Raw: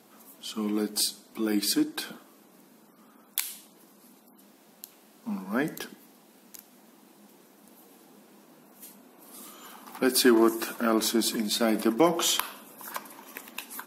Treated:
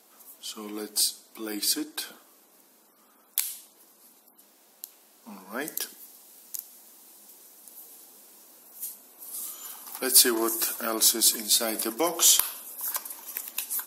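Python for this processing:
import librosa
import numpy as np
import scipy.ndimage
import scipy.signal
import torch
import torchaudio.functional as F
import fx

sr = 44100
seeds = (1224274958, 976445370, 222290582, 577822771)

y = fx.bass_treble(x, sr, bass_db=-15, treble_db=fx.steps((0.0, 7.0), (5.6, 15.0)))
y = 10.0 ** (-2.5 / 20.0) * np.tanh(y / 10.0 ** (-2.5 / 20.0))
y = F.gain(torch.from_numpy(y), -3.0).numpy()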